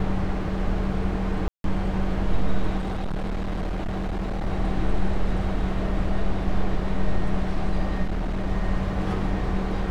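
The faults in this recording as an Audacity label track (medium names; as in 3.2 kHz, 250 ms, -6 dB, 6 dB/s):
1.480000	1.640000	dropout 162 ms
2.770000	4.470000	clipped -24 dBFS
8.030000	8.460000	clipped -22 dBFS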